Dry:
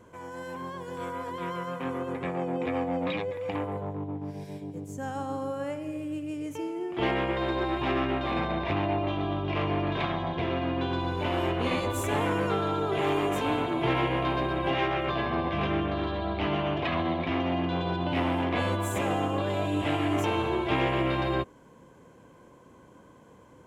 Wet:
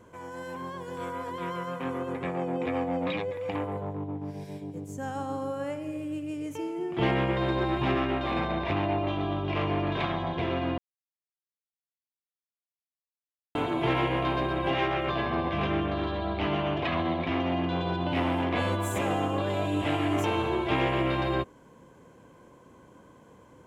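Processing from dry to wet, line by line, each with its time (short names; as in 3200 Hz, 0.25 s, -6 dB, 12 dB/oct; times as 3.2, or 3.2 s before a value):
6.78–7.95 bell 150 Hz +9 dB 0.95 oct
10.78–13.55 mute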